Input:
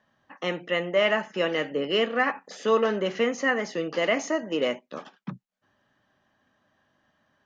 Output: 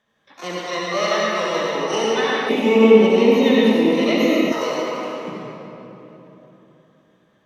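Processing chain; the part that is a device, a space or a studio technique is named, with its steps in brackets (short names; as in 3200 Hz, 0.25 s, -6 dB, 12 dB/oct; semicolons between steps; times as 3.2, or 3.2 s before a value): shimmer-style reverb (harmoniser +12 st -4 dB; reverb RT60 3.4 s, pre-delay 60 ms, DRR -5.5 dB); 2.49–4.52 EQ curve 140 Hz 0 dB, 230 Hz +15 dB, 1600 Hz -11 dB, 2400 Hz +9 dB, 4800 Hz -4 dB; gain -3.5 dB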